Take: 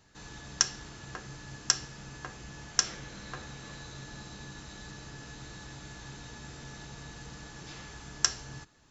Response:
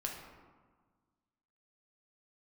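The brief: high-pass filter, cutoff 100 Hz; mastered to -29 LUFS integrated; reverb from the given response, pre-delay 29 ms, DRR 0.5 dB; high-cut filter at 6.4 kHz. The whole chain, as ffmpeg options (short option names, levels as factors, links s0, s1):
-filter_complex "[0:a]highpass=100,lowpass=6400,asplit=2[s0][s1];[1:a]atrim=start_sample=2205,adelay=29[s2];[s1][s2]afir=irnorm=-1:irlink=0,volume=0.841[s3];[s0][s3]amix=inputs=2:normalize=0,volume=2.11"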